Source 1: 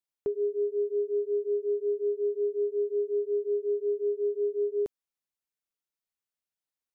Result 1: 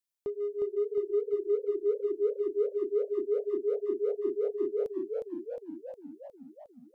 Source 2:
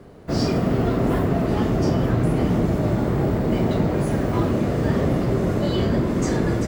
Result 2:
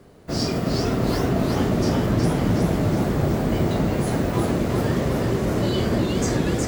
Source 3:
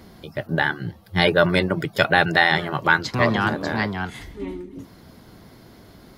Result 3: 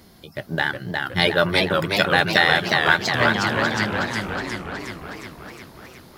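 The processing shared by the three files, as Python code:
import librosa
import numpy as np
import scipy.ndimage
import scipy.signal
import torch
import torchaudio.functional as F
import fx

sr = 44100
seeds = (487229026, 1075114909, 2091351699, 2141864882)

p1 = fx.high_shelf(x, sr, hz=3100.0, db=8.5)
p2 = np.sign(p1) * np.maximum(np.abs(p1) - 10.0 ** (-25.5 / 20.0), 0.0)
p3 = p1 + (p2 * 10.0 ** (-9.0 / 20.0))
p4 = fx.echo_warbled(p3, sr, ms=363, feedback_pct=63, rate_hz=2.8, cents=143, wet_db=-3.5)
y = p4 * 10.0 ** (-5.0 / 20.0)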